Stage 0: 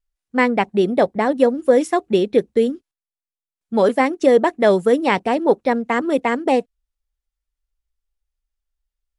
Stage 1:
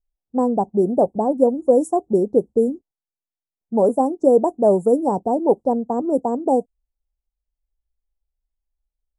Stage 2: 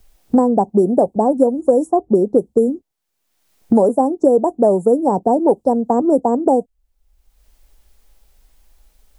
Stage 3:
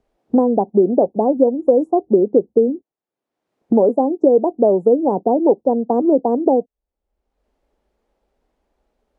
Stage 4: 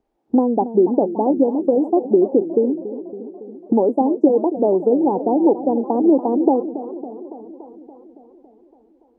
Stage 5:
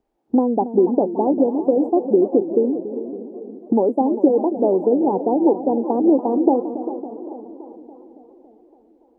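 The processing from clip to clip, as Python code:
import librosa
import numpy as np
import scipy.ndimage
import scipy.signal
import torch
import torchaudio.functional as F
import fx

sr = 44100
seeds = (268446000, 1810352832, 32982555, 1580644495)

y1 = scipy.signal.sosfilt(scipy.signal.cheby1(3, 1.0, [830.0, 7700.0], 'bandstop', fs=sr, output='sos'), x)
y1 = fx.env_lowpass(y1, sr, base_hz=1400.0, full_db=-13.0)
y2 = fx.band_squash(y1, sr, depth_pct=100)
y2 = y2 * librosa.db_to_amplitude(3.0)
y3 = fx.bandpass_q(y2, sr, hz=400.0, q=0.88)
y3 = y3 * librosa.db_to_amplitude(1.0)
y4 = fx.small_body(y3, sr, hz=(310.0, 840.0), ring_ms=20, db=9)
y4 = fx.echo_warbled(y4, sr, ms=282, feedback_pct=66, rate_hz=2.8, cents=140, wet_db=-13.5)
y4 = y4 * librosa.db_to_amplitude(-6.5)
y5 = fx.echo_feedback(y4, sr, ms=399, feedback_pct=36, wet_db=-13.0)
y5 = y5 * librosa.db_to_amplitude(-1.0)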